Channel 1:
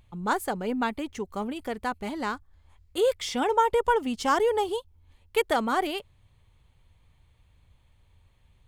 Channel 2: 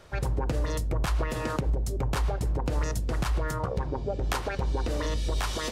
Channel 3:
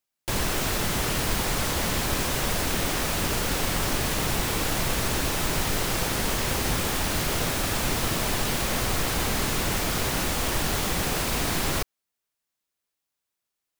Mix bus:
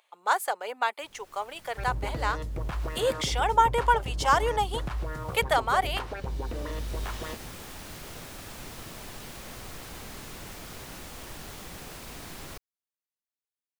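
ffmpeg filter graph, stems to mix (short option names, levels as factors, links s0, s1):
-filter_complex "[0:a]highpass=f=570:w=0.5412,highpass=f=570:w=1.3066,volume=1.33,asplit=2[s0][s1];[1:a]acrossover=split=3400[s2][s3];[s3]acompressor=threshold=0.00355:ratio=4:attack=1:release=60[s4];[s2][s4]amix=inputs=2:normalize=0,adelay=1650,volume=0.562[s5];[2:a]adelay=750,volume=0.158[s6];[s1]apad=whole_len=641442[s7];[s6][s7]sidechaincompress=threshold=0.00891:ratio=12:attack=6:release=828[s8];[s0][s5][s8]amix=inputs=3:normalize=0"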